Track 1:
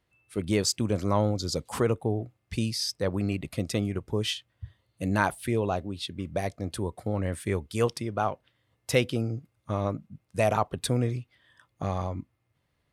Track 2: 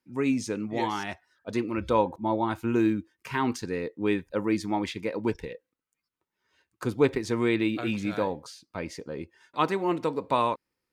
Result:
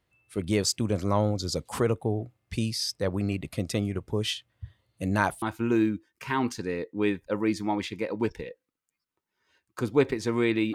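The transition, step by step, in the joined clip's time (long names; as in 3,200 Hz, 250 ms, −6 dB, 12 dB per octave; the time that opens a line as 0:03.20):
track 1
0:05.42: continue with track 2 from 0:02.46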